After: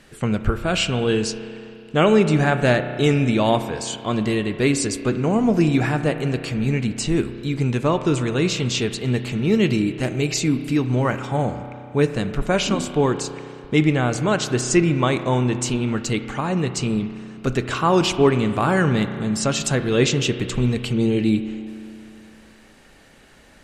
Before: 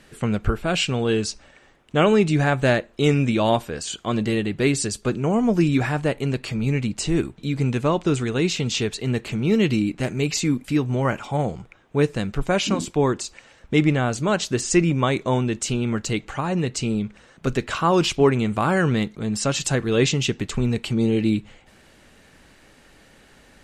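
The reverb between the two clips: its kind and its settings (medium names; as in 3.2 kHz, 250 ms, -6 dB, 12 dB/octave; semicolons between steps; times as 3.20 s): spring tank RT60 2.6 s, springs 32 ms, chirp 55 ms, DRR 9.5 dB; trim +1 dB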